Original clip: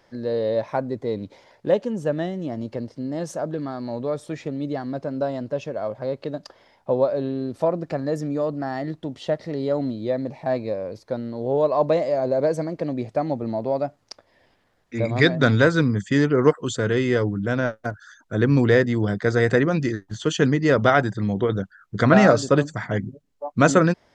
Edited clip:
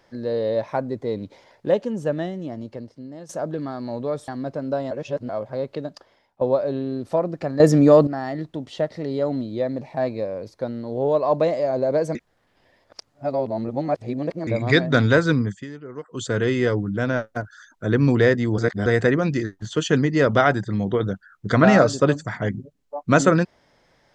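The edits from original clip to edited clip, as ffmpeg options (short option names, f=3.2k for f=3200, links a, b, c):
-filter_complex "[0:a]asplit=14[a][b][c][d][e][f][g][h][i][j][k][l][m][n];[a]atrim=end=3.29,asetpts=PTS-STARTPTS,afade=t=out:st=2.1:d=1.19:silence=0.223872[o];[b]atrim=start=3.29:end=4.282,asetpts=PTS-STARTPTS,afade=t=in:d=0.004:c=hsin:silence=0.223872[p];[c]atrim=start=4.768:end=5.402[q];[d]atrim=start=5.398:end=5.782,asetpts=PTS-STARTPTS,areverse[r];[e]atrim=start=5.778:end=6.9,asetpts=PTS-STARTPTS,afade=t=out:st=0.502:d=0.62:silence=0.188365[s];[f]atrim=start=6.9:end=8.092,asetpts=PTS-STARTPTS,afade=t=in:d=0.004:c=hsin:silence=0.188365[t];[g]atrim=start=8.088:end=8.562,asetpts=PTS-STARTPTS,volume=12dB[u];[h]atrim=start=8.558:end=12.642[v];[i]atrim=start=12.638:end=14.962,asetpts=PTS-STARTPTS,areverse[w];[j]atrim=start=14.958:end=16.16,asetpts=PTS-STARTPTS,afade=t=out:st=0.942:d=0.26:silence=0.11885[x];[k]atrim=start=16.16:end=16.52,asetpts=PTS-STARTPTS,volume=-18.5dB[y];[l]atrim=start=16.52:end=19.072,asetpts=PTS-STARTPTS,afade=t=in:d=0.26:silence=0.11885[z];[m]atrim=start=19.068:end=19.352,asetpts=PTS-STARTPTS,areverse[aa];[n]atrim=start=19.348[ab];[o][p]concat=n=2:v=0:a=1[ac];[ac][q]acrossfade=d=0.004:c1=hsin:c2=hsin[ad];[ad][r]acrossfade=d=0.004:c1=hsin:c2=hsin[ae];[s][t]concat=n=2:v=0:a=1[af];[ae][af]acrossfade=d=0.004:c1=hsin:c2=hsin[ag];[ag][u]acrossfade=d=0.004:c1=hsin:c2=hsin[ah];[ah][v]acrossfade=d=0.004:c1=hsin:c2=hsin[ai];[ai][w]acrossfade=d=0.004:c1=hsin:c2=hsin[aj];[x][y][z]concat=n=3:v=0:a=1[ak];[aj][ak]acrossfade=d=0.004:c1=hsin:c2=hsin[al];[al][aa]acrossfade=d=0.004:c1=hsin:c2=hsin[am];[am][ab]acrossfade=d=0.004:c1=hsin:c2=hsin"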